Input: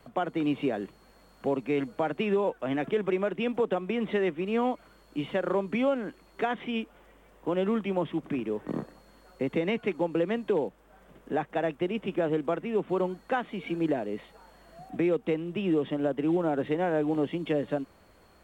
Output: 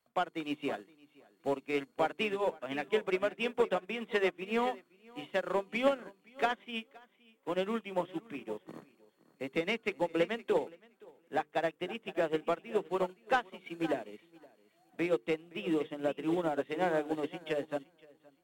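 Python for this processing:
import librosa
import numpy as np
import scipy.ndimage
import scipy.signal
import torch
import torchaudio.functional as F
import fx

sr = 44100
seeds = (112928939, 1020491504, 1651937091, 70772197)

y = fx.tilt_eq(x, sr, slope=2.5)
y = fx.hum_notches(y, sr, base_hz=50, count=9)
y = fx.leveller(y, sr, passes=1)
y = fx.echo_feedback(y, sr, ms=519, feedback_pct=29, wet_db=-10.0)
y = fx.upward_expand(y, sr, threshold_db=-38.0, expansion=2.5)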